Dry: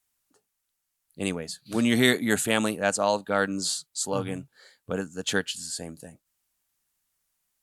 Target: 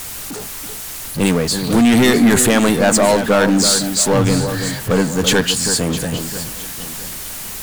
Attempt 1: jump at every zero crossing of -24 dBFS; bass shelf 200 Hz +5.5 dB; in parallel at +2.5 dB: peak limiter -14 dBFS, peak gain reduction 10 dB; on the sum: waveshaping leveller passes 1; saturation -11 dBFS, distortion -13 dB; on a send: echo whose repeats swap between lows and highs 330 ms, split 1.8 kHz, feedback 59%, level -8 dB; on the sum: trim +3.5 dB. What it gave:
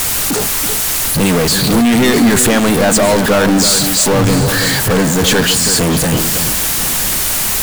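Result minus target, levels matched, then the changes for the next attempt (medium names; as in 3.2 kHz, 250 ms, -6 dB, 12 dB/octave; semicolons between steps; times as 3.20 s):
jump at every zero crossing: distortion +10 dB
change: jump at every zero crossing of -36 dBFS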